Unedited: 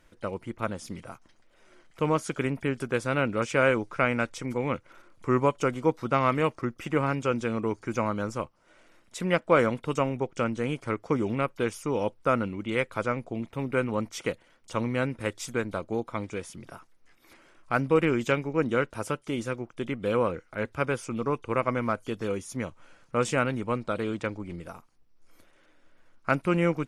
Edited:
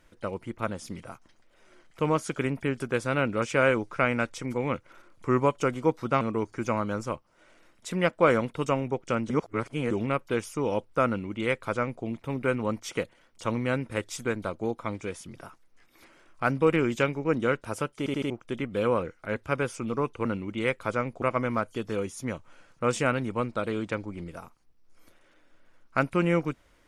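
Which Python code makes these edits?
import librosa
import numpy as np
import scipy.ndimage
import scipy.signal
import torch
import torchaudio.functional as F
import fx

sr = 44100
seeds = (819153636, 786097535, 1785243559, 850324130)

y = fx.edit(x, sr, fx.cut(start_s=6.21, length_s=1.29),
    fx.reverse_span(start_s=10.59, length_s=0.61),
    fx.duplicate(start_s=12.36, length_s=0.97, to_s=21.54),
    fx.stutter_over(start_s=19.27, slice_s=0.08, count=4), tone=tone)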